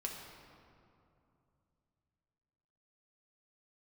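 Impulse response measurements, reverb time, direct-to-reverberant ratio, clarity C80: 2.7 s, −0.5 dB, 4.0 dB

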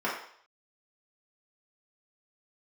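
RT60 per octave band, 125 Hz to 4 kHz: 0.35, 0.45, 0.60, 0.60, 0.55, 0.65 seconds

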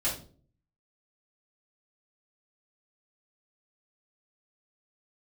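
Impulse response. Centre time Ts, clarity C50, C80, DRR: 29 ms, 7.5 dB, 12.5 dB, −9.0 dB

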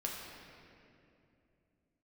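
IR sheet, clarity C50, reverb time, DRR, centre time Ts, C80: 1.0 dB, 2.7 s, −2.5 dB, 110 ms, 2.0 dB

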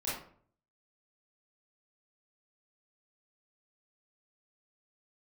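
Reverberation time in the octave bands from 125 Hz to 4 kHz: 0.75, 0.60, 0.55, 0.50, 0.45, 0.30 seconds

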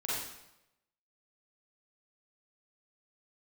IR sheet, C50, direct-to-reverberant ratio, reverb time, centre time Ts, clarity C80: −2.5 dB, −8.5 dB, 0.90 s, 78 ms, 2.0 dB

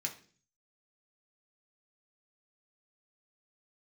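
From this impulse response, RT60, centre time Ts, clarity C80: 0.45 s, 12 ms, 17.0 dB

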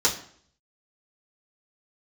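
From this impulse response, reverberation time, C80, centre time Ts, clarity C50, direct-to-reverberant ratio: 0.55 s, 14.5 dB, 17 ms, 11.0 dB, −7.5 dB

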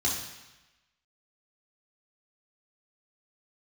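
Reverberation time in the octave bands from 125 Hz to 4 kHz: 1.1, 1.0, 0.95, 1.1, 1.2, 1.1 seconds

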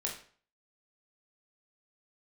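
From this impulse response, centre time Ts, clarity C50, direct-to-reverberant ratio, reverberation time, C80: 27 ms, 7.0 dB, −1.5 dB, 0.45 s, 11.5 dB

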